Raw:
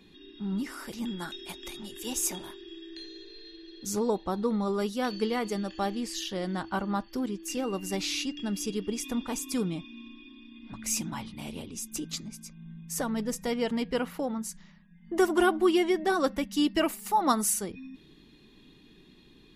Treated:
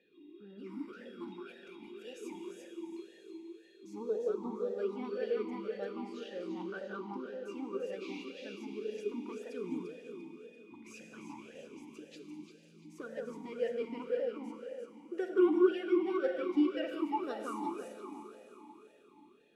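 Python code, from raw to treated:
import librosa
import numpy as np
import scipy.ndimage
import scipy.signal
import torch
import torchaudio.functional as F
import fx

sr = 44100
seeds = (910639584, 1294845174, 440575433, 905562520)

y = fx.echo_alternate(x, sr, ms=172, hz=1700.0, feedback_pct=63, wet_db=-2.0)
y = fx.rev_schroeder(y, sr, rt60_s=3.6, comb_ms=33, drr_db=5.0)
y = fx.vowel_sweep(y, sr, vowels='e-u', hz=1.9)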